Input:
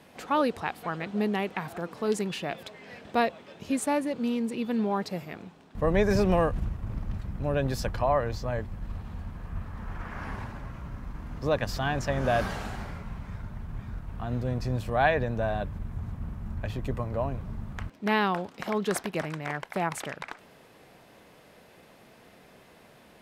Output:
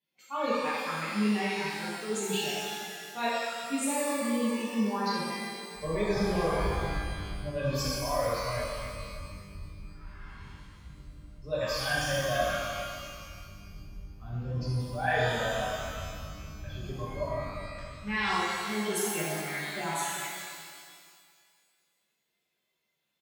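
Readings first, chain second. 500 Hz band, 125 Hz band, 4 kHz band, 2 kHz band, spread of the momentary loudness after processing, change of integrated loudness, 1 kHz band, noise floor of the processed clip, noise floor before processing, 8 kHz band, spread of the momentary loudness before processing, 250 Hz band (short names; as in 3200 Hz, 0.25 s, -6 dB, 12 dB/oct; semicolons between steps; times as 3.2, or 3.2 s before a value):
-3.0 dB, -4.0 dB, +5.0 dB, +1.0 dB, 19 LU, -1.0 dB, -2.0 dB, -79 dBFS, -55 dBFS, +6.5 dB, 14 LU, -3.0 dB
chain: per-bin expansion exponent 2; low shelf 480 Hz -9 dB; comb 5.1 ms, depth 40%; reverse; compressor 5:1, threshold -37 dBFS, peak gain reduction 13 dB; reverse; shimmer reverb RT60 2 s, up +12 st, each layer -8 dB, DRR -9 dB; gain +2.5 dB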